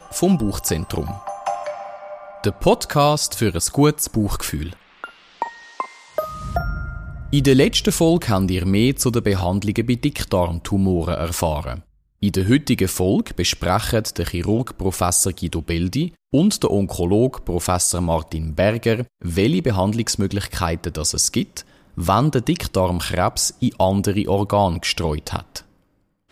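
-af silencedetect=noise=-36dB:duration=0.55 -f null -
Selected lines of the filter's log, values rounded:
silence_start: 25.60
silence_end: 26.31 | silence_duration: 0.71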